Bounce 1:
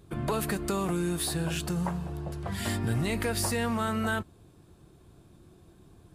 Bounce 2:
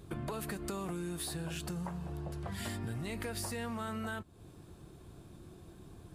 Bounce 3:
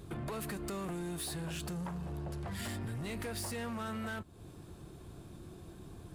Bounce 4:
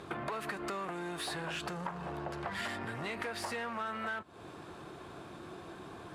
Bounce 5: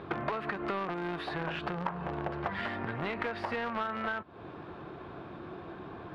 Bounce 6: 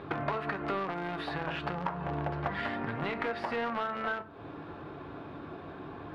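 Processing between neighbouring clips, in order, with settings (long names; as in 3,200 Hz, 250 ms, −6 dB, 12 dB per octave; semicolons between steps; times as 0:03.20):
downward compressor 4 to 1, threshold −41 dBFS, peak gain reduction 14 dB; level +2.5 dB
soft clipping −37.5 dBFS, distortion −13 dB; level +3 dB
resonant band-pass 1,300 Hz, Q 0.73; downward compressor, threshold −48 dBFS, peak gain reduction 9 dB; level +13.5 dB
in parallel at −7.5 dB: bit reduction 5 bits; on the sum: high-frequency loss of the air 340 metres; level +4.5 dB
convolution reverb RT60 0.40 s, pre-delay 4 ms, DRR 8 dB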